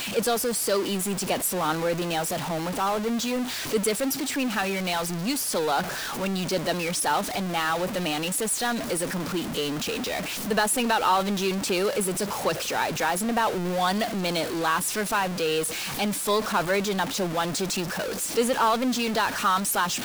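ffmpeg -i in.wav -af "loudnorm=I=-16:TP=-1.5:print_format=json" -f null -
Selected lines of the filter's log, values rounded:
"input_i" : "-25.5",
"input_tp" : "-9.6",
"input_lra" : "1.6",
"input_thresh" : "-35.5",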